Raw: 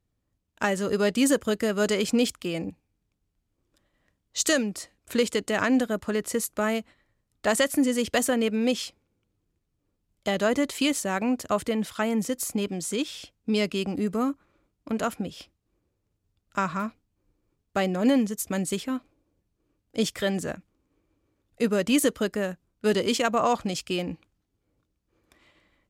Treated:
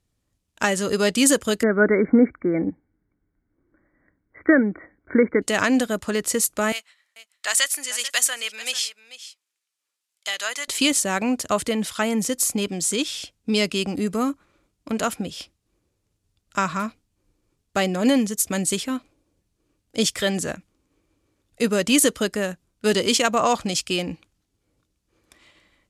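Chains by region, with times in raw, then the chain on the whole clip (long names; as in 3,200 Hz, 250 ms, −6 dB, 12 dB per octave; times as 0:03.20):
0:01.63–0:05.42: linear-phase brick-wall low-pass 2,300 Hz + hollow resonant body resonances 300/1,500 Hz, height 9 dB, ringing for 20 ms
0:06.72–0:10.68: high-pass filter 1,400 Hz + single-tap delay 440 ms −15 dB
whole clip: low-pass filter 12,000 Hz 24 dB per octave; high-shelf EQ 2,700 Hz +8.5 dB; level +2.5 dB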